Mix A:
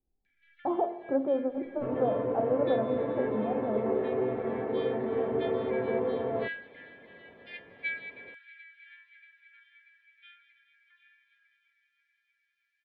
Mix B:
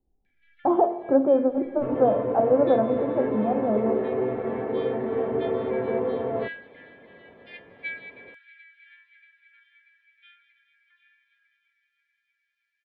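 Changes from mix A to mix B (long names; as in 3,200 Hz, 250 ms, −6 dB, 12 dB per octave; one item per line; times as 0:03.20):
speech +8.5 dB
second sound +3.5 dB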